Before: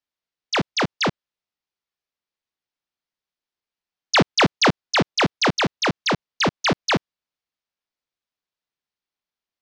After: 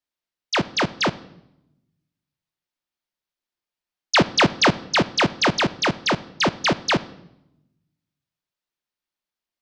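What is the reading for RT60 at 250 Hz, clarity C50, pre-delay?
1.3 s, 18.5 dB, 3 ms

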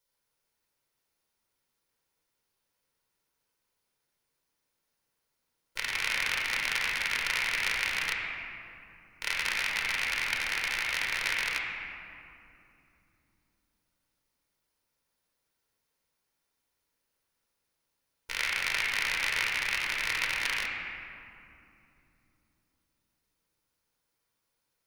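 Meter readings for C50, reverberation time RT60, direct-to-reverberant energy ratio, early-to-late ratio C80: 0.5 dB, 2.8 s, -1.5 dB, 2.0 dB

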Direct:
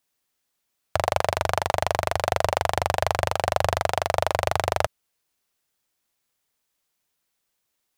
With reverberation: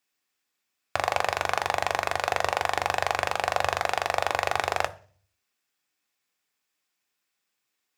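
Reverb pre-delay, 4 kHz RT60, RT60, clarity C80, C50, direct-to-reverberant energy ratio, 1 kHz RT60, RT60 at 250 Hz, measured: 3 ms, 0.55 s, 0.45 s, 24.5 dB, 20.0 dB, 9.5 dB, 0.40 s, 0.65 s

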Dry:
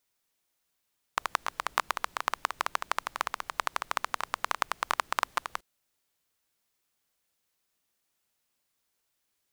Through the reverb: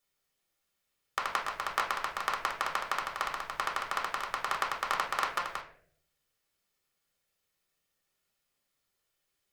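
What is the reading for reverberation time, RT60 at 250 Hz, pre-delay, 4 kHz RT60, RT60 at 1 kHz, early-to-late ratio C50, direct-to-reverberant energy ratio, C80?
0.60 s, 0.80 s, 5 ms, 0.35 s, 0.45 s, 8.0 dB, -1.0 dB, 12.0 dB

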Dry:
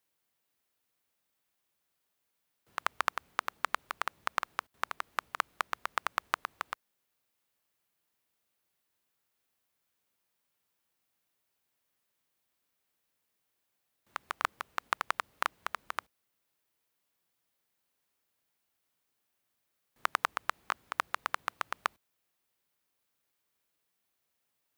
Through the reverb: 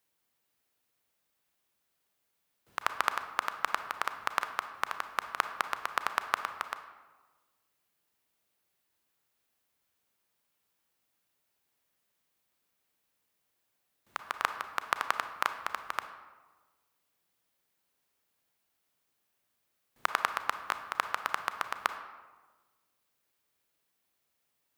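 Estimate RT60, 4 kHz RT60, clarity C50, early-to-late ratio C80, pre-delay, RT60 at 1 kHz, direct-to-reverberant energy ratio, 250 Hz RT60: 1.3 s, 0.75 s, 10.0 dB, 12.0 dB, 30 ms, 1.3 s, 9.0 dB, 1.4 s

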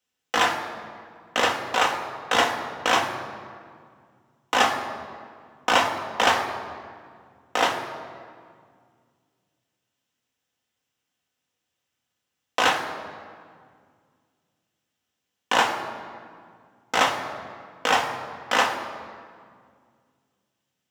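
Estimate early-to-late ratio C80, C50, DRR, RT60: 9.0 dB, 8.0 dB, 2.0 dB, 2.0 s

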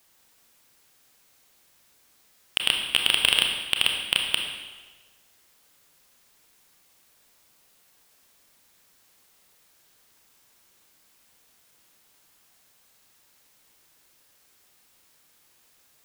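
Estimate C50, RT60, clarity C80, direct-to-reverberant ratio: 4.0 dB, 1.4 s, 6.0 dB, 2.0 dB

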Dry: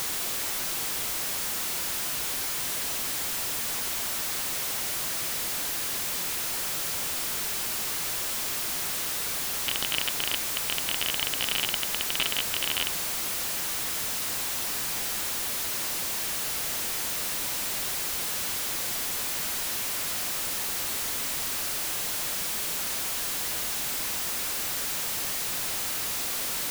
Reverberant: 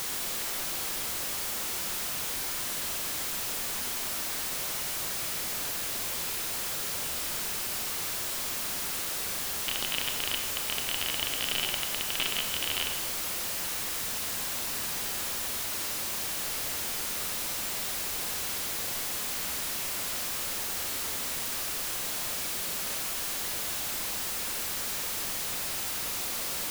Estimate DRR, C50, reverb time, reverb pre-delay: 4.0 dB, 5.5 dB, 1.7 s, 30 ms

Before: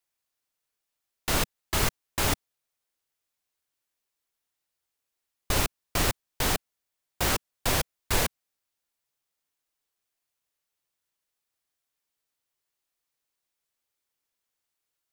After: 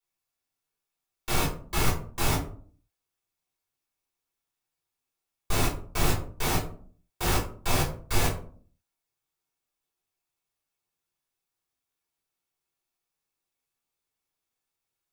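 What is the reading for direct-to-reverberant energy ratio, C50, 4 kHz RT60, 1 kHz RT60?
-7.0 dB, 7.5 dB, 0.25 s, 0.45 s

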